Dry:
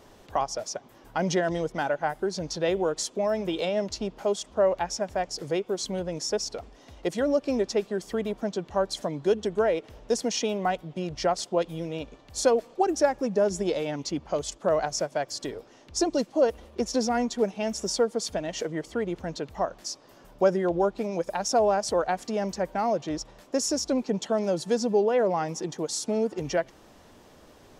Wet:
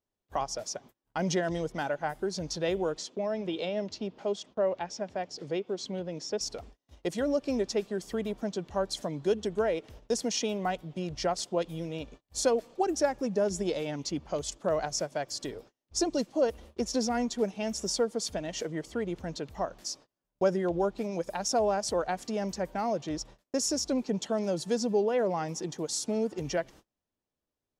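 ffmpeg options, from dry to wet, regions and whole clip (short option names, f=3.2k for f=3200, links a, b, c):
-filter_complex "[0:a]asettb=1/sr,asplit=3[a][b][c];[a]atrim=end=2.974[d];[b]atrim=start=2.97:end=6.41,asetpts=PTS-STARTPTS,afade=t=in:d=0.004:c=qsin,afade=t=out:st=3.436:d=0.004:c=qsin,highpass=150,lowpass=4.3k,equalizer=f=1.3k:t=o:w=1.7:g=-3[e];[c]atrim=start=6.406[f];[d][e]acrossfade=d=0.004:c1=hsin:c2=qsin[g];[g][f]acrossfade=d=0.004:c1=qsin:c2=hsin,agate=range=-34dB:threshold=-46dB:ratio=16:detection=peak,equalizer=f=860:w=0.38:g=-4,volume=-1dB"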